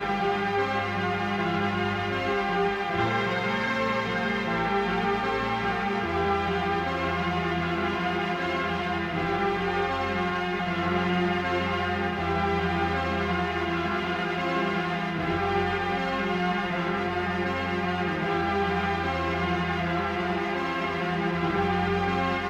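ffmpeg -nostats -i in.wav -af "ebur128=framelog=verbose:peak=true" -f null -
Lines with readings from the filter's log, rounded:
Integrated loudness:
  I:         -26.7 LUFS
  Threshold: -36.7 LUFS
Loudness range:
  LRA:         0.9 LU
  Threshold: -46.7 LUFS
  LRA low:   -27.1 LUFS
  LRA high:  -26.2 LUFS
True peak:
  Peak:      -13.0 dBFS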